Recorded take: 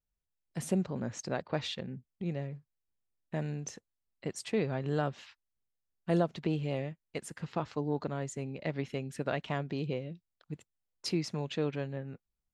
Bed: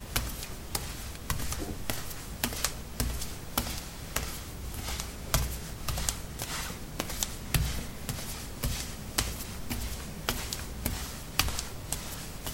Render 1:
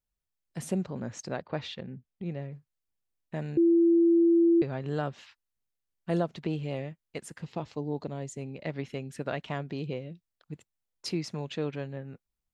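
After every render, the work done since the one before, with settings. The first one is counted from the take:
0:01.36–0:02.52: high-frequency loss of the air 100 metres
0:03.57–0:04.62: beep over 337 Hz −18 dBFS
0:07.41–0:08.41: parametric band 1,400 Hz −9.5 dB 0.85 octaves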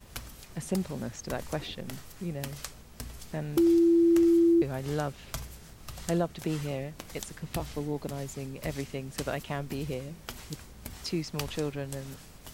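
mix in bed −10 dB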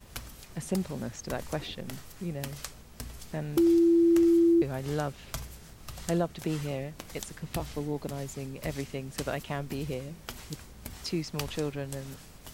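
no processing that can be heard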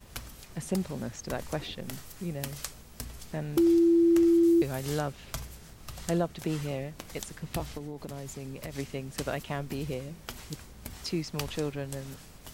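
0:01.82–0:03.05: high-shelf EQ 5,700 Hz +4.5 dB
0:04.43–0:04.99: high-shelf EQ 3,600 Hz +10 dB
0:07.77–0:08.78: downward compressor, threshold −34 dBFS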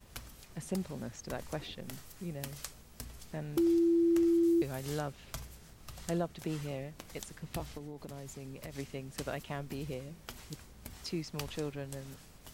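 level −5.5 dB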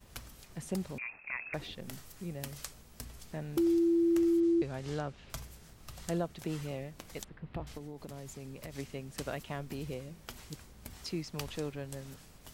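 0:00.98–0:01.54: voice inversion scrambler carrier 2,600 Hz
0:04.40–0:05.30: high-frequency loss of the air 86 metres
0:07.24–0:07.67: high-frequency loss of the air 450 metres

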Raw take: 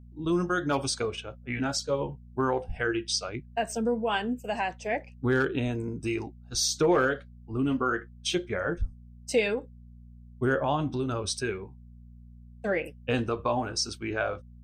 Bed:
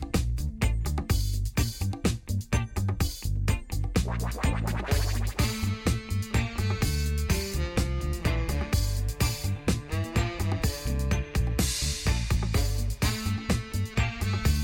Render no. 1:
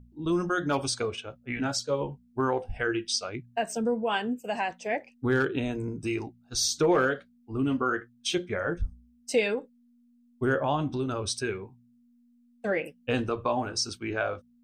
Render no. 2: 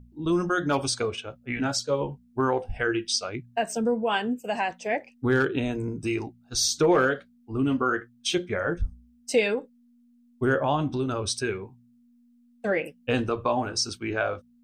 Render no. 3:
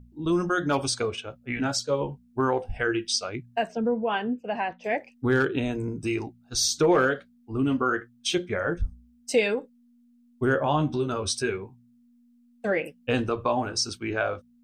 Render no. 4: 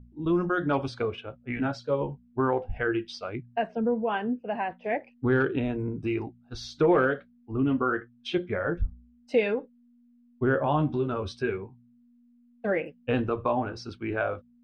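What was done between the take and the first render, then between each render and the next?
hum removal 60 Hz, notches 3
level +2.5 dB
0:03.67–0:04.84: high-frequency loss of the air 270 metres; 0:10.65–0:11.57: double-tracking delay 13 ms −7.5 dB
high-frequency loss of the air 360 metres

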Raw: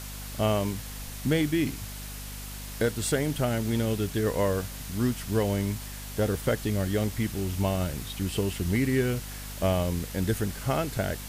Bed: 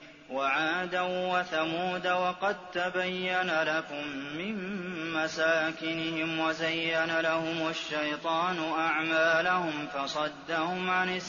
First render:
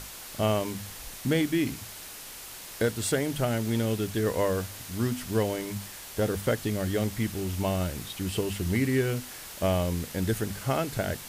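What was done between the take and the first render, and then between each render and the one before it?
mains-hum notches 50/100/150/200/250 Hz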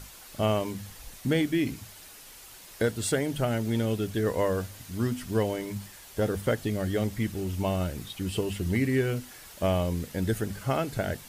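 broadband denoise 7 dB, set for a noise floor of −43 dBFS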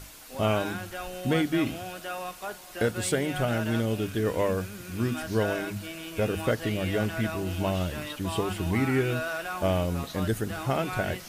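mix in bed −7.5 dB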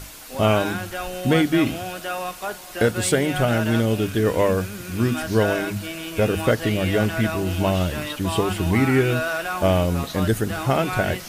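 level +7 dB

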